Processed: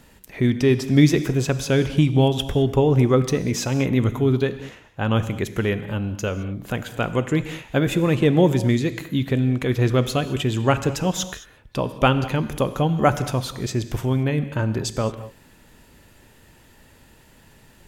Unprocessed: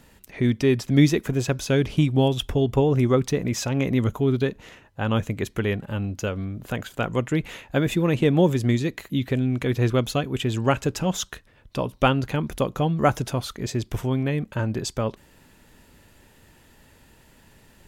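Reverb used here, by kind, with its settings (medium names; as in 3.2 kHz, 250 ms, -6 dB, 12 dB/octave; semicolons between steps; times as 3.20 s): gated-style reverb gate 240 ms flat, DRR 11.5 dB; trim +2 dB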